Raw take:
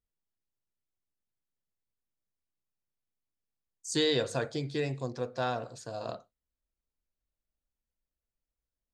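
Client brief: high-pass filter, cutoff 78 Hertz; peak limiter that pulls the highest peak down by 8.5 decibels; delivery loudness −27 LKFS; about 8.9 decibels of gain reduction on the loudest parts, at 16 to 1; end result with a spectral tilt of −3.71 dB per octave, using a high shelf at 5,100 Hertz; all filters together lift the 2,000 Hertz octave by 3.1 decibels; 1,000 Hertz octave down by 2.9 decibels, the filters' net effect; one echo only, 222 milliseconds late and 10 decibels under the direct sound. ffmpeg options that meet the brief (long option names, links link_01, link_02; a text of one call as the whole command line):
ffmpeg -i in.wav -af "highpass=78,equalizer=frequency=1000:width_type=o:gain=-6,equalizer=frequency=2000:width_type=o:gain=4.5,highshelf=frequency=5100:gain=8,acompressor=threshold=-30dB:ratio=16,alimiter=level_in=4.5dB:limit=-24dB:level=0:latency=1,volume=-4.5dB,aecho=1:1:222:0.316,volume=12.5dB" out.wav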